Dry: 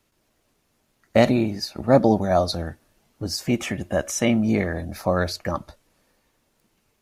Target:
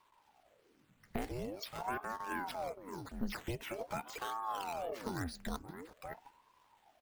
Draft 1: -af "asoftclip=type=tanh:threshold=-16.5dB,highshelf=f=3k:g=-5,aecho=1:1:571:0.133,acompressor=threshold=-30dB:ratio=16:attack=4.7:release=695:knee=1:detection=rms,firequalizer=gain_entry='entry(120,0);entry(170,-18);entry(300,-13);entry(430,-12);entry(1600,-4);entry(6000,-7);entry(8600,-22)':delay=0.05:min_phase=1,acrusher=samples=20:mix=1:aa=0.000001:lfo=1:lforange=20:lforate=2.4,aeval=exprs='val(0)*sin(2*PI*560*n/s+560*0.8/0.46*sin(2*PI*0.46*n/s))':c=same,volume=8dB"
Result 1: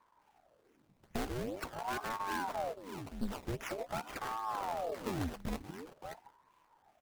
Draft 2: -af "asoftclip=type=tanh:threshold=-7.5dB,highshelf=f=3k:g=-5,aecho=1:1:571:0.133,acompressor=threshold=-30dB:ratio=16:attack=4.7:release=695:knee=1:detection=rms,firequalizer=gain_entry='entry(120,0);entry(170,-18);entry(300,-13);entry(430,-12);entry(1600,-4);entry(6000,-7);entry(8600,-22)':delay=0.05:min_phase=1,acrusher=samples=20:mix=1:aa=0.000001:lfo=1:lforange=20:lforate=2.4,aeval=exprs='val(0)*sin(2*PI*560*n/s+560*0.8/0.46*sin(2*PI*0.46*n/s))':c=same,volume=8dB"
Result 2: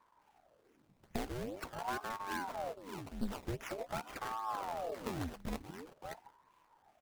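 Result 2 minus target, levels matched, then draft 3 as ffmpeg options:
decimation with a swept rate: distortion +5 dB
-af "asoftclip=type=tanh:threshold=-7.5dB,highshelf=f=3k:g=-5,aecho=1:1:571:0.133,acompressor=threshold=-30dB:ratio=16:attack=4.7:release=695:knee=1:detection=rms,firequalizer=gain_entry='entry(120,0);entry(170,-18);entry(300,-13);entry(430,-12);entry(1600,-4);entry(6000,-7);entry(8600,-22)':delay=0.05:min_phase=1,acrusher=samples=6:mix=1:aa=0.000001:lfo=1:lforange=6:lforate=2.4,aeval=exprs='val(0)*sin(2*PI*560*n/s+560*0.8/0.46*sin(2*PI*0.46*n/s))':c=same,volume=8dB"

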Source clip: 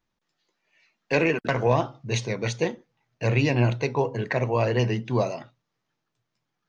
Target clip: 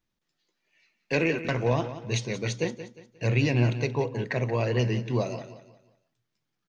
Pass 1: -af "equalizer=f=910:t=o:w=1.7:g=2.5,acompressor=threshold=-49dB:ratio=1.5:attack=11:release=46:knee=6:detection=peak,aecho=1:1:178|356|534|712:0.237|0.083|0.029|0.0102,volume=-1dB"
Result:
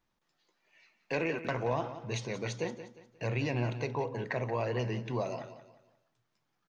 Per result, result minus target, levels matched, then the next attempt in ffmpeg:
compressor: peak gain reduction +11 dB; 1000 Hz band +5.5 dB
-af "equalizer=f=910:t=o:w=1.7:g=2.5,aecho=1:1:178|356|534|712:0.237|0.083|0.029|0.0102,volume=-1dB"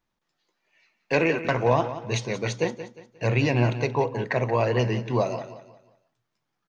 1000 Hz band +5.5 dB
-af "equalizer=f=910:t=o:w=1.7:g=-6,aecho=1:1:178|356|534|712:0.237|0.083|0.029|0.0102,volume=-1dB"

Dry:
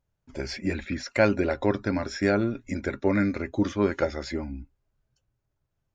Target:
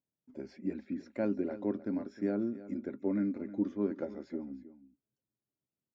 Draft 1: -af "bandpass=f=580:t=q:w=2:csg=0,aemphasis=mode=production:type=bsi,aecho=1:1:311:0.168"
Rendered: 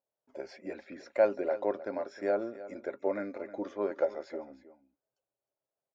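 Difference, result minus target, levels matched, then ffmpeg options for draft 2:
250 Hz band -9.5 dB
-af "bandpass=f=240:t=q:w=2:csg=0,aemphasis=mode=production:type=bsi,aecho=1:1:311:0.168"

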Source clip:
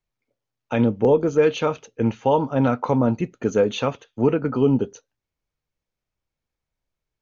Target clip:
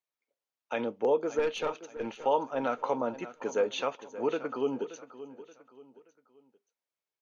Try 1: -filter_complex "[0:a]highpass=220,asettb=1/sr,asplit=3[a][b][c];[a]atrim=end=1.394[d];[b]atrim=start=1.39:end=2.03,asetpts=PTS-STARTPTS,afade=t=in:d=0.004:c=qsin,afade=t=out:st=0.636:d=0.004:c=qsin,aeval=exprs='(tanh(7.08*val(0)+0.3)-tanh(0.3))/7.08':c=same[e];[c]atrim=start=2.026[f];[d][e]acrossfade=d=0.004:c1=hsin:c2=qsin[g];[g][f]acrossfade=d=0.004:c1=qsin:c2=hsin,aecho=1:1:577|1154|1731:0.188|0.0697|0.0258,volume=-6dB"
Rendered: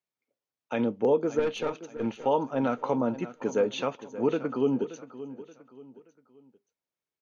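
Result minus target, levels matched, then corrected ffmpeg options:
250 Hz band +5.0 dB
-filter_complex "[0:a]highpass=460,asettb=1/sr,asplit=3[a][b][c];[a]atrim=end=1.394[d];[b]atrim=start=1.39:end=2.03,asetpts=PTS-STARTPTS,afade=t=in:d=0.004:c=qsin,afade=t=out:st=0.636:d=0.004:c=qsin,aeval=exprs='(tanh(7.08*val(0)+0.3)-tanh(0.3))/7.08':c=same[e];[c]atrim=start=2.026[f];[d][e]acrossfade=d=0.004:c1=hsin:c2=qsin[g];[g][f]acrossfade=d=0.004:c1=qsin:c2=hsin,aecho=1:1:577|1154|1731:0.188|0.0697|0.0258,volume=-6dB"

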